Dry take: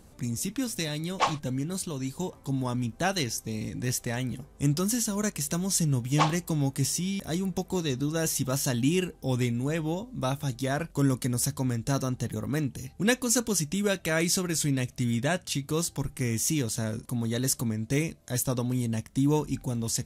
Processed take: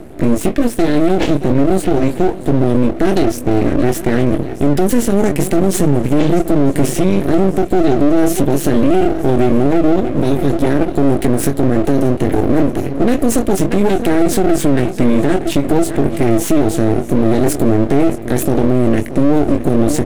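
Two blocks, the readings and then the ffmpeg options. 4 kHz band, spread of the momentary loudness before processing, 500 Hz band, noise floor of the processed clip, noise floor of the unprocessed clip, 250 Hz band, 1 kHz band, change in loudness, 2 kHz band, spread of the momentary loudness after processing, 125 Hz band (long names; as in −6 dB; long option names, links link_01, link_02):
+3.5 dB, 6 LU, +18.5 dB, −24 dBFS, −54 dBFS, +16.5 dB, +13.5 dB, +14.0 dB, +8.0 dB, 3 LU, +10.5 dB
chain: -filter_complex "[0:a]highpass=frequency=52:width=0.5412,highpass=frequency=52:width=1.3066,equalizer=frequency=330:width_type=o:width=0.67:gain=7.5,asplit=2[link_01][link_02];[link_02]adelay=21,volume=-7dB[link_03];[link_01][link_03]amix=inputs=2:normalize=0,asplit=2[link_04][link_05];[link_05]aecho=0:1:629|1258|1887:0.1|0.034|0.0116[link_06];[link_04][link_06]amix=inputs=2:normalize=0,acrossover=split=490|3000[link_07][link_08][link_09];[link_08]acompressor=threshold=-37dB:ratio=6[link_10];[link_07][link_10][link_09]amix=inputs=3:normalize=0,firequalizer=gain_entry='entry(190,0);entry(350,11);entry(980,-26);entry(1600,4);entry(5400,-16);entry(8700,-8)':delay=0.05:min_phase=1,asplit=2[link_11][link_12];[link_12]adelay=954,lowpass=frequency=4900:poles=1,volume=-19.5dB,asplit=2[link_13][link_14];[link_14]adelay=954,lowpass=frequency=4900:poles=1,volume=0.5,asplit=2[link_15][link_16];[link_16]adelay=954,lowpass=frequency=4900:poles=1,volume=0.5,asplit=2[link_17][link_18];[link_18]adelay=954,lowpass=frequency=4900:poles=1,volume=0.5[link_19];[link_13][link_15][link_17][link_19]amix=inputs=4:normalize=0[link_20];[link_11][link_20]amix=inputs=2:normalize=0,aeval=exprs='max(val(0),0)':channel_layout=same,alimiter=level_in=19.5dB:limit=-1dB:release=50:level=0:latency=1,volume=-1dB"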